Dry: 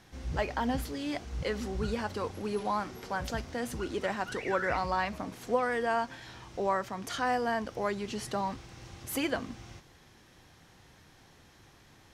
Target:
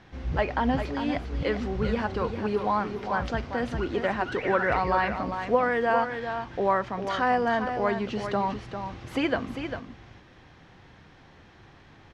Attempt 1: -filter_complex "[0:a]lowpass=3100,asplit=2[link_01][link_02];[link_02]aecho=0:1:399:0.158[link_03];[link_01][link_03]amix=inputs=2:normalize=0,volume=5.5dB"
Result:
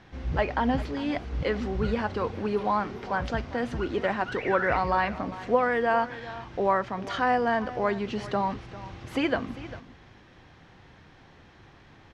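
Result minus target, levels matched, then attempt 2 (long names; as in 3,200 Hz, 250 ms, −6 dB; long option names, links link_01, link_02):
echo-to-direct −8 dB
-filter_complex "[0:a]lowpass=3100,asplit=2[link_01][link_02];[link_02]aecho=0:1:399:0.398[link_03];[link_01][link_03]amix=inputs=2:normalize=0,volume=5.5dB"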